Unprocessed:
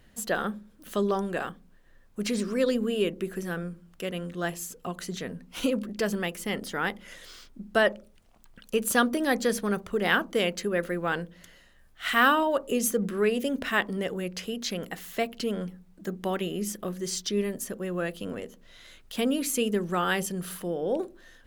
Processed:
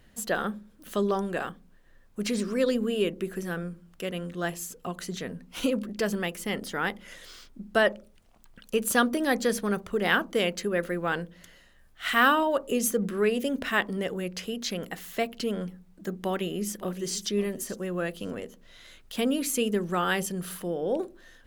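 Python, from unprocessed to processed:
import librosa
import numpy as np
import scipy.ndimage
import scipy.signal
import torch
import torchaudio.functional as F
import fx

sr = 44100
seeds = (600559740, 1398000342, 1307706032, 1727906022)

y = fx.echo_throw(x, sr, start_s=16.2, length_s=0.99, ms=560, feedback_pct=15, wet_db=-15.5)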